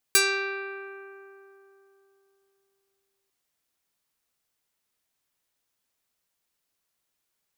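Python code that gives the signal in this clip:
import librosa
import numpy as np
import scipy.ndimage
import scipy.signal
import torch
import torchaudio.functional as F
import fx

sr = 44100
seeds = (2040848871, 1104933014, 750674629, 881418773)

y = fx.pluck(sr, length_s=3.15, note=67, decay_s=3.36, pick=0.38, brightness='medium')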